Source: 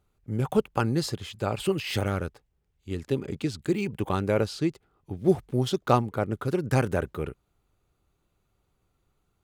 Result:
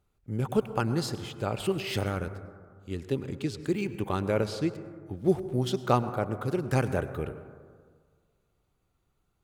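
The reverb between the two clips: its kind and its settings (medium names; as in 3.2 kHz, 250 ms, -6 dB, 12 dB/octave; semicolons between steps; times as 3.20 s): plate-style reverb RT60 1.8 s, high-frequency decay 0.25×, pre-delay 85 ms, DRR 12 dB; trim -2.5 dB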